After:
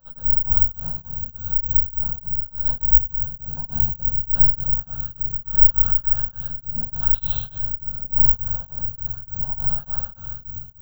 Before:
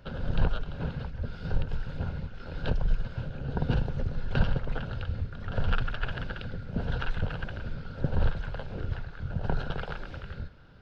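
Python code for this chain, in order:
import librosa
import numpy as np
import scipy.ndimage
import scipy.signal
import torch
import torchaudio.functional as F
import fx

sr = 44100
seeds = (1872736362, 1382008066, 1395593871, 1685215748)

p1 = fx.comb(x, sr, ms=6.1, depth=0.69, at=(5.05, 5.68))
p2 = fx.rider(p1, sr, range_db=4, speed_s=2.0)
p3 = p1 + F.gain(torch.from_numpy(p2), 0.0).numpy()
p4 = fx.spec_paint(p3, sr, seeds[0], shape='noise', start_s=7.12, length_s=0.31, low_hz=2100.0, high_hz=4200.0, level_db=-27.0)
p5 = fx.fixed_phaser(p4, sr, hz=910.0, stages=4)
p6 = p5 + fx.echo_single(p5, sr, ms=120, db=-8.5, dry=0)
p7 = fx.room_shoebox(p6, sr, seeds[1], volume_m3=170.0, walls='mixed', distance_m=2.5)
p8 = (np.kron(p7[::2], np.eye(2)[0]) * 2)[:len(p7)]
p9 = p8 * np.abs(np.cos(np.pi * 3.4 * np.arange(len(p8)) / sr))
y = F.gain(torch.from_numpy(p9), -16.0).numpy()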